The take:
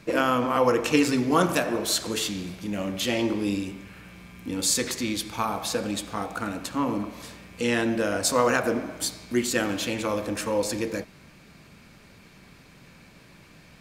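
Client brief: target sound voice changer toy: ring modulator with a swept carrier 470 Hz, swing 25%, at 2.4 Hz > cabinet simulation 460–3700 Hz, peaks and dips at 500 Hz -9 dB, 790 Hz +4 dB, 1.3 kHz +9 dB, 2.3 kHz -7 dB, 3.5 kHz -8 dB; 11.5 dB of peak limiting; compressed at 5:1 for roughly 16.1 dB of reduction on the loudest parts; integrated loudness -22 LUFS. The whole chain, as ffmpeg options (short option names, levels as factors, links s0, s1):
-af "acompressor=threshold=0.0178:ratio=5,alimiter=level_in=2.11:limit=0.0631:level=0:latency=1,volume=0.473,aeval=exprs='val(0)*sin(2*PI*470*n/s+470*0.25/2.4*sin(2*PI*2.4*n/s))':c=same,highpass=460,equalizer=f=500:t=q:w=4:g=-9,equalizer=f=790:t=q:w=4:g=4,equalizer=f=1300:t=q:w=4:g=9,equalizer=f=2300:t=q:w=4:g=-7,equalizer=f=3500:t=q:w=4:g=-8,lowpass=f=3700:w=0.5412,lowpass=f=3700:w=1.3066,volume=13.3"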